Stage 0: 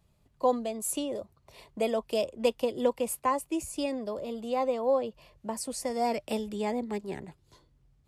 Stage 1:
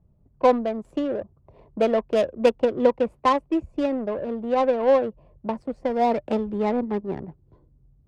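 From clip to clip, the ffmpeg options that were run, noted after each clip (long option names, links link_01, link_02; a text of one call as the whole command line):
ffmpeg -i in.wav -af "adynamicsmooth=sensitivity=2.5:basefreq=560,volume=8dB" out.wav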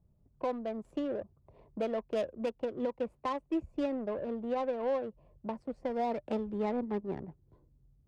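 ffmpeg -i in.wav -af "alimiter=limit=-16.5dB:level=0:latency=1:release=334,volume=-7.5dB" out.wav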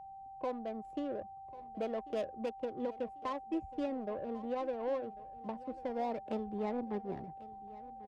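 ffmpeg -i in.wav -af "aecho=1:1:1093|2186|3279:0.119|0.044|0.0163,aeval=exprs='val(0)+0.00708*sin(2*PI*780*n/s)':channel_layout=same,volume=-4dB" out.wav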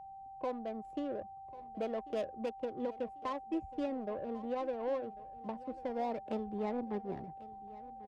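ffmpeg -i in.wav -af anull out.wav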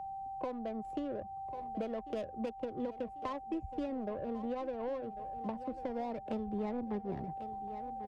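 ffmpeg -i in.wav -filter_complex "[0:a]acrossover=split=160[link_01][link_02];[link_02]acompressor=threshold=-45dB:ratio=4[link_03];[link_01][link_03]amix=inputs=2:normalize=0,volume=7.5dB" out.wav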